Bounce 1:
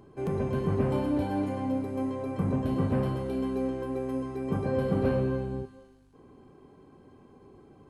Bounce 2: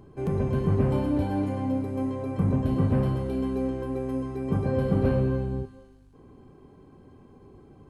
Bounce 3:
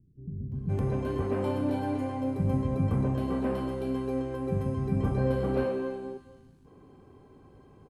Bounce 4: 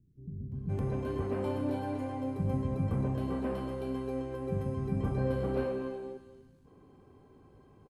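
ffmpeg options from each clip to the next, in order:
-af "lowshelf=f=150:g=9"
-filter_complex "[0:a]lowshelf=f=110:g=-4,acrossover=split=240[a][b];[b]adelay=520[c];[a][c]amix=inputs=2:normalize=0,dynaudnorm=f=280:g=5:m=6.5dB,volume=-7dB"
-af "aecho=1:1:243:0.178,volume=-4dB"

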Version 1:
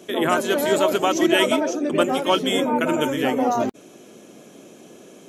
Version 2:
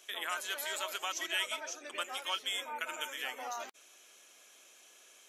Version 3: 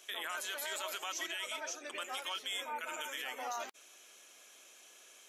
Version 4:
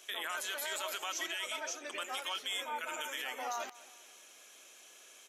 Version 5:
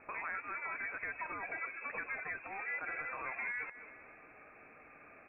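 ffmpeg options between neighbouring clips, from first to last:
-af "highpass=1.5k,acompressor=threshold=-35dB:ratio=1.5,volume=-5dB"
-af "alimiter=level_in=6.5dB:limit=-24dB:level=0:latency=1:release=15,volume=-6.5dB,volume=1dB"
-af "aecho=1:1:205|410|615:0.1|0.046|0.0212,volume=1.5dB"
-filter_complex "[0:a]acrossover=split=600|1600[a][b][c];[a]acompressor=threshold=-57dB:ratio=4[d];[b]acompressor=threshold=-47dB:ratio=4[e];[c]acompressor=threshold=-53dB:ratio=4[f];[d][e][f]amix=inputs=3:normalize=0,lowpass=f=2.5k:t=q:w=0.5098,lowpass=f=2.5k:t=q:w=0.6013,lowpass=f=2.5k:t=q:w=0.9,lowpass=f=2.5k:t=q:w=2.563,afreqshift=-2900,volume=6.5dB"

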